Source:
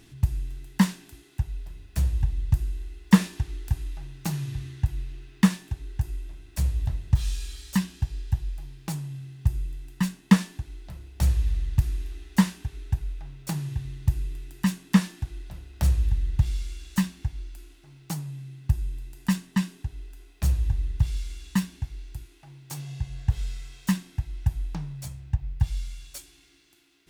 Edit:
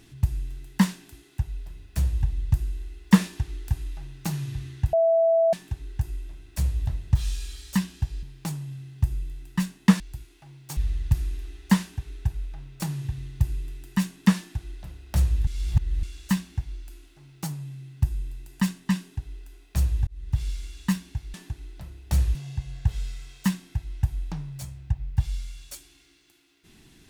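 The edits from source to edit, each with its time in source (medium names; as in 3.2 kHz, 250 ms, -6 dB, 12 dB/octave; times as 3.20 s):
4.93–5.53 s: bleep 660 Hz -16.5 dBFS
8.23–8.66 s: delete
10.43–11.44 s: swap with 22.01–22.78 s
16.14–16.70 s: reverse
20.74–21.10 s: fade in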